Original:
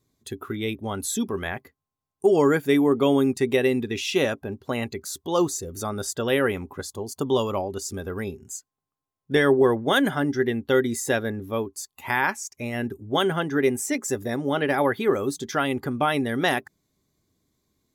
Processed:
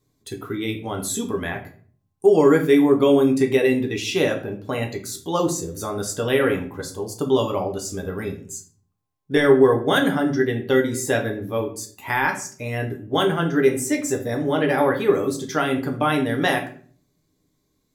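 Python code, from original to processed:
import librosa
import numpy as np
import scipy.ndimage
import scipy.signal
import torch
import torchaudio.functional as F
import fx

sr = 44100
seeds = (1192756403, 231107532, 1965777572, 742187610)

y = fx.room_shoebox(x, sr, seeds[0], volume_m3=41.0, walls='mixed', distance_m=0.48)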